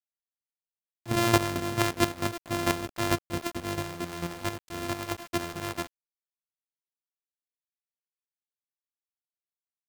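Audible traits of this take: a buzz of ramps at a fixed pitch in blocks of 128 samples; chopped level 4.5 Hz, depth 65%, duty 20%; a quantiser's noise floor 8-bit, dither none

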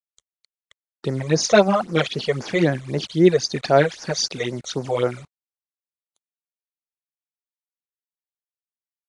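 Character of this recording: a quantiser's noise floor 8-bit, dither none; phasing stages 12, 3.8 Hz, lowest notch 260–3400 Hz; Vorbis

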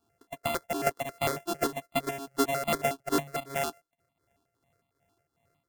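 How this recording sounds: a buzz of ramps at a fixed pitch in blocks of 64 samples; tremolo triangle 2.6 Hz, depth 70%; notches that jump at a steady rate 11 Hz 550–1600 Hz

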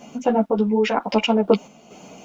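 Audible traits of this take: a quantiser's noise floor 12-bit, dither none; random-step tremolo 4.2 Hz; a shimmering, thickened sound

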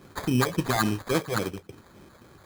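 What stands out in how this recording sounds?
phasing stages 4, 3.6 Hz, lowest notch 250–4200 Hz; aliases and images of a low sample rate 2800 Hz, jitter 0%

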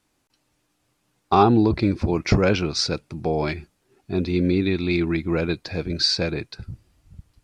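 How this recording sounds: noise floor -71 dBFS; spectral tilt -5.0 dB/oct

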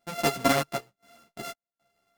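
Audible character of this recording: a buzz of ramps at a fixed pitch in blocks of 64 samples; random-step tremolo 3.9 Hz, depth 95%; a shimmering, thickened sound

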